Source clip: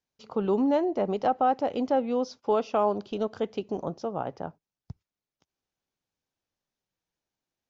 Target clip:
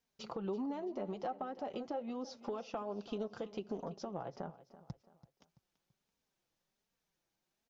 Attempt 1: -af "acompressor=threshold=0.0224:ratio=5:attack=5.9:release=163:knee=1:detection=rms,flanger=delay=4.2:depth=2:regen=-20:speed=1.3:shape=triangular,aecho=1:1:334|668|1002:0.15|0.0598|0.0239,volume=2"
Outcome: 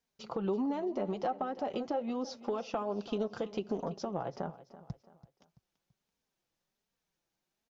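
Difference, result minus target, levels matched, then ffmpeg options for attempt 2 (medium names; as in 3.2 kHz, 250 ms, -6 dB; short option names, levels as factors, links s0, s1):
compression: peak gain reduction -6 dB
-af "acompressor=threshold=0.00944:ratio=5:attack=5.9:release=163:knee=1:detection=rms,flanger=delay=4.2:depth=2:regen=-20:speed=1.3:shape=triangular,aecho=1:1:334|668|1002:0.15|0.0598|0.0239,volume=2"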